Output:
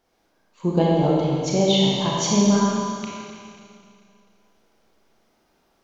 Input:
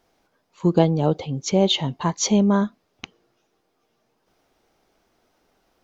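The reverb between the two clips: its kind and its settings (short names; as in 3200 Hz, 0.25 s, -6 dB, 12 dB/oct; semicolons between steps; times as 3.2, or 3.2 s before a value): Schroeder reverb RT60 2.4 s, combs from 28 ms, DRR -4.5 dB; gain -4.5 dB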